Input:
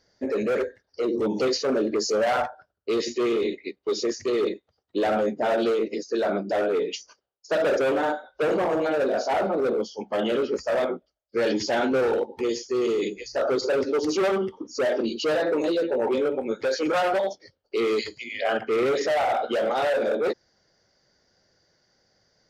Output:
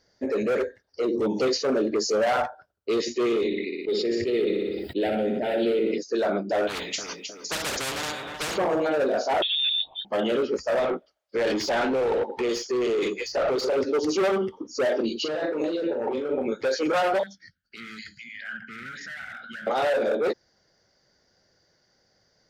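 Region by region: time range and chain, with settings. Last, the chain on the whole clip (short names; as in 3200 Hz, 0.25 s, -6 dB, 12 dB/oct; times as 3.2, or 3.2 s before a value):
3.48–5.98 fixed phaser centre 2700 Hz, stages 4 + feedback echo 60 ms, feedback 50%, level -10 dB + sustainer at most 25 dB/s
6.67–8.58 feedback echo 0.311 s, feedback 25%, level -19.5 dB + spectral compressor 4:1
9.42–10.05 three-band isolator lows -17 dB, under 260 Hz, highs -13 dB, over 2300 Hz + upward compressor, threshold -31 dBFS + inverted band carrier 4000 Hz
10.79–13.77 compressor 1.5:1, threshold -27 dBFS + overloaded stage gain 22 dB + overdrive pedal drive 18 dB, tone 2700 Hz, clips at -17.5 dBFS
15.2–16.52 air absorption 68 m + negative-ratio compressor -28 dBFS + doubler 39 ms -7 dB
17.23–19.67 EQ curve 130 Hz 0 dB, 200 Hz +6 dB, 420 Hz -28 dB, 1100 Hz -19 dB, 1500 Hz +11 dB, 2400 Hz -2 dB + compressor 2:1, threshold -42 dBFS
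whole clip: dry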